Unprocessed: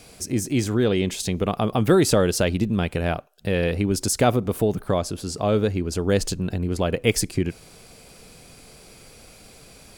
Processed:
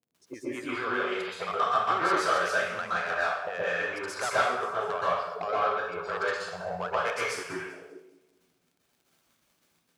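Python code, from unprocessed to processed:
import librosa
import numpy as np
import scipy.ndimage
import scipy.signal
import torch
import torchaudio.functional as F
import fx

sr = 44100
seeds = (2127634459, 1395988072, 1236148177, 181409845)

y = fx.wiener(x, sr, points=9)
y = np.clip(y, -10.0 ** (-14.0 / 20.0), 10.0 ** (-14.0 / 20.0))
y = fx.peak_eq(y, sr, hz=200.0, db=-8.5, octaves=0.21)
y = fx.noise_reduce_blind(y, sr, reduce_db=26)
y = fx.low_shelf(y, sr, hz=410.0, db=-7.5)
y = fx.echo_thinned(y, sr, ms=197, feedback_pct=62, hz=420.0, wet_db=-16)
y = fx.auto_wah(y, sr, base_hz=210.0, top_hz=1300.0, q=2.6, full_db=-28.5, direction='up')
y = fx.dmg_crackle(y, sr, seeds[0], per_s=60.0, level_db=-61.0)
y = fx.transient(y, sr, attack_db=4, sustain_db=0)
y = 10.0 ** (-29.0 / 20.0) * np.tanh(y / 10.0 ** (-29.0 / 20.0))
y = scipy.signal.sosfilt(scipy.signal.butter(2, 67.0, 'highpass', fs=sr, output='sos'), y)
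y = fx.rev_plate(y, sr, seeds[1], rt60_s=0.76, hf_ratio=0.9, predelay_ms=110, drr_db=-8.5)
y = F.gain(torch.from_numpy(y), 2.5).numpy()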